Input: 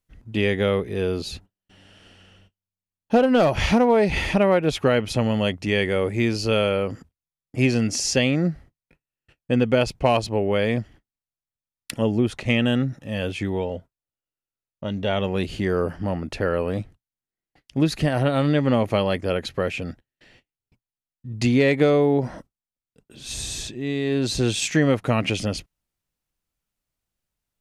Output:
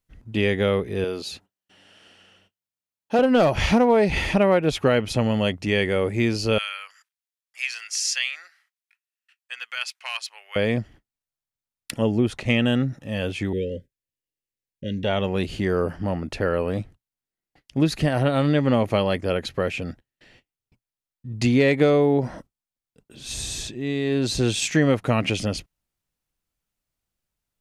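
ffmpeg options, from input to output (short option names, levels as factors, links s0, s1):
-filter_complex "[0:a]asettb=1/sr,asplit=3[s0][s1][s2];[s0]atrim=end=1.044[s3];[s1]atrim=start=1.04:end=3.19,asetpts=PTS-STARTPTS,afade=t=in:d=0.004:c=qsin,afade=t=out:st=2.146:d=0.004:c=qsin,highpass=f=420:p=1[s4];[s2]atrim=start=3.186[s5];[s3][s4]acrossfade=d=0.004:c1=hsin:c2=qsin[s6];[s6][s5]acrossfade=d=0.004:c1=qsin:c2=hsin,asettb=1/sr,asplit=3[s7][s8][s9];[s7]atrim=end=6.584[s10];[s8]atrim=start=6.58:end=10.56,asetpts=PTS-STARTPTS,afade=t=in:d=0.004:c=qsin,afade=t=out:st=3.976:d=0.004:c=qsin,highpass=f=1400:w=0.5412,highpass=f=1400:w=1.3066[s11];[s9]atrim=start=10.556[s12];[s10][s11]acrossfade=d=0.004:c1=hsin:c2=qsin[s13];[s13][s12]acrossfade=d=0.004:c1=qsin:c2=hsin,asettb=1/sr,asplit=3[s14][s15][s16];[s14]atrim=end=13.534[s17];[s15]atrim=start=13.53:end=15.04,asetpts=PTS-STARTPTS,afade=t=in:d=0.004:c=qsin,afade=t=out:st=1.506:d=0.004:c=qsin,asuperstop=centerf=950:order=20:qfactor=0.94[s18];[s16]atrim=start=15.036[s19];[s17][s18]acrossfade=d=0.004:c1=hsin:c2=qsin[s20];[s20][s19]acrossfade=d=0.004:c1=qsin:c2=hsin"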